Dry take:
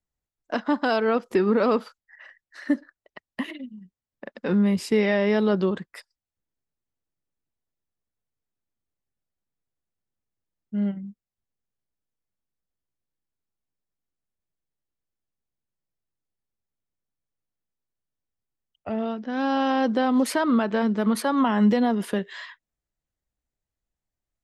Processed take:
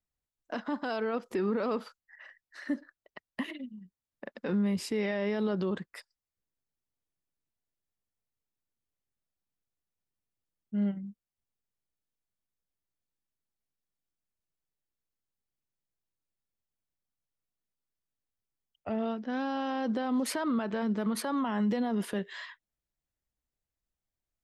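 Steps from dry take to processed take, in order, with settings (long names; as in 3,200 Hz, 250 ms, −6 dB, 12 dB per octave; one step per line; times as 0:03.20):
brickwall limiter −18.5 dBFS, peak gain reduction 8 dB
level −4 dB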